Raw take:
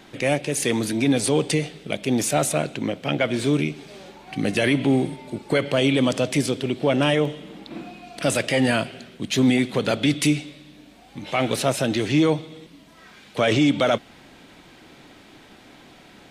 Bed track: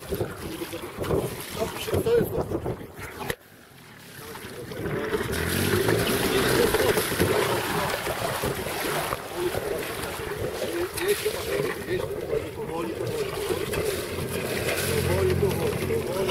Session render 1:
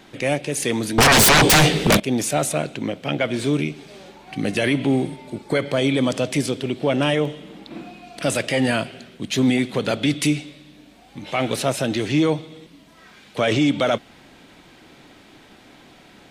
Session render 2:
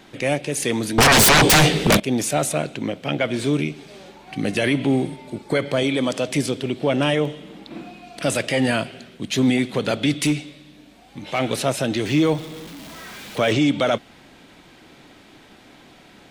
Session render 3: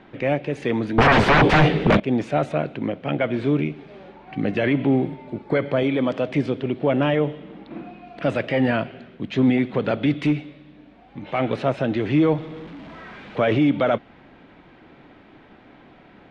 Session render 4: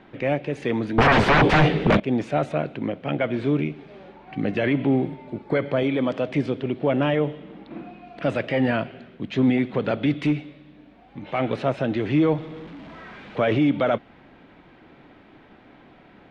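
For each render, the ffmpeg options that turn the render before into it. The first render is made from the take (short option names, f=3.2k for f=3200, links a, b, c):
-filter_complex "[0:a]asettb=1/sr,asplit=3[a][b][c];[a]atrim=end=0.984[d];[b]atrim=start=0.98:end=2,asetpts=PTS-STARTPTS,afade=t=in:d=0.004:c=qsin,afade=t=out:st=1.016:d=0.004:c=qsin,aeval=exprs='0.335*sin(PI/2*7.08*val(0)/0.335)':c=same[e];[c]atrim=start=1.996[f];[d][e]acrossfade=d=0.004:c1=hsin:c2=qsin[g];[g][f]acrossfade=d=0.004:c1=qsin:c2=hsin,asettb=1/sr,asplit=3[h][i][j];[h]atrim=end=5.434[k];[i]atrim=start=5.43:end=6.12,asetpts=PTS-STARTPTS,afade=t=in:d=0.004:c=qsin,afade=t=out:st=0.686:d=0.004:c=qsin,bandreject=f=2.8k:w=6.7[l];[j]atrim=start=6.116[m];[k][l]acrossfade=d=0.004:c1=hsin:c2=qsin[n];[n][m]acrossfade=d=0.004:c1=qsin:c2=hsin"
-filter_complex "[0:a]asettb=1/sr,asplit=3[a][b][c];[a]atrim=end=5.834[d];[b]atrim=start=5.83:end=6.29,asetpts=PTS-STARTPTS,afade=t=in:d=0.004:c=qsin,afade=t=out:st=0.456:d=0.004:c=qsin,lowshelf=f=130:g=-11.5[e];[c]atrim=start=6.286[f];[d][e]acrossfade=d=0.004:c1=hsin:c2=qsin[g];[g][f]acrossfade=d=0.004:c1=qsin:c2=hsin,asplit=3[h][i][j];[h]afade=t=out:st=10.17:d=0.02[k];[i]asoftclip=type=hard:threshold=-13dB,afade=t=in:st=10.17:d=0.02,afade=t=out:st=11.38:d=0.02[l];[j]afade=t=in:st=11.38:d=0.02[m];[k][l][m]amix=inputs=3:normalize=0,asettb=1/sr,asplit=3[n][o][p];[n]atrim=end=12.054[q];[o]atrim=start=12.05:end=13.52,asetpts=PTS-STARTPTS,afade=t=in:d=0.004:c=qsin,afade=t=out:st=1.466:d=0.004:c=qsin,aeval=exprs='val(0)+0.5*0.0188*sgn(val(0))':c=same[r];[p]atrim=start=13.516[s];[q][r]acrossfade=d=0.004:c1=hsin:c2=qsin[t];[t][s]acrossfade=d=0.004:c1=qsin:c2=hsin"
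-af "lowpass=2.4k,aemphasis=mode=reproduction:type=cd"
-af "volume=-1.5dB"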